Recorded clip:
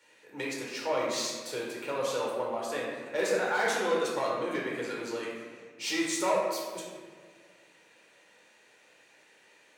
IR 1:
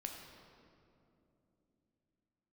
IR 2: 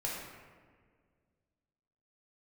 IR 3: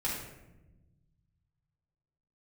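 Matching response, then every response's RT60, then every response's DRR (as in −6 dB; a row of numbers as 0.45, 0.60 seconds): 2; 2.9, 1.8, 1.0 seconds; 1.5, −4.5, −7.0 decibels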